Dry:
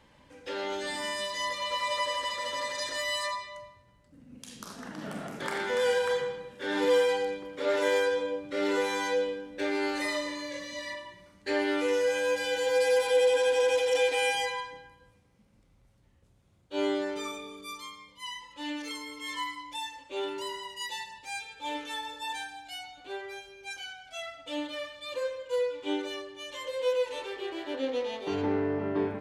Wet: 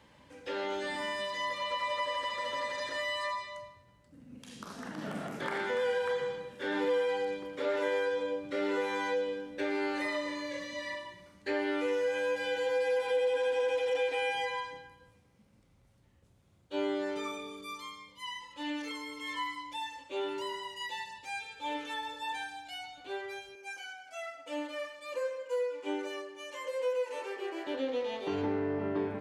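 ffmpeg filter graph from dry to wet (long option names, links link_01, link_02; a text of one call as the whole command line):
ffmpeg -i in.wav -filter_complex "[0:a]asettb=1/sr,asplit=3[link_01][link_02][link_03];[link_01]atrim=end=23.554[link_04];[link_02]atrim=start=23.55:end=27.67,asetpts=PTS-STARTPTS,afade=type=in:duration=0.004:curve=qsin,afade=type=out:start_time=4.116:duration=0.004:curve=qsin,highpass=300,equalizer=frequency=3600:width_type=o:width=0.44:gain=-13[link_05];[link_03]atrim=start=27.666[link_06];[link_04][link_05]acrossfade=duration=0.004:curve1=hsin:curve2=qsin[link_07];[link_07][link_06]acrossfade=duration=0.004:curve1=qsin:curve2=hsin,acrossover=split=3300[link_08][link_09];[link_09]acompressor=threshold=-51dB:ratio=4:attack=1:release=60[link_10];[link_08][link_10]amix=inputs=2:normalize=0,highpass=55,acompressor=threshold=-31dB:ratio=2" out.wav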